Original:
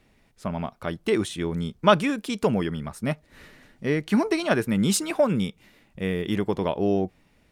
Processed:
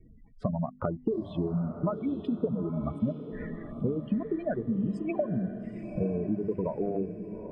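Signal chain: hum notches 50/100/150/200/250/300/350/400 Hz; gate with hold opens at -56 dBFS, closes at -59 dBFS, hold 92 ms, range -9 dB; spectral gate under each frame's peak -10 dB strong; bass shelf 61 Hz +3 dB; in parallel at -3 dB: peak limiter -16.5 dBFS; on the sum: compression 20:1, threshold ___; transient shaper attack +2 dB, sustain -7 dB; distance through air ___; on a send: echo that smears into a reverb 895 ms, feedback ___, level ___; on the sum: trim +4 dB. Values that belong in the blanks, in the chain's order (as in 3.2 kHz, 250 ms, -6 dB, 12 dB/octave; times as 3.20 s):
-30 dBFS, 480 m, 44%, -9 dB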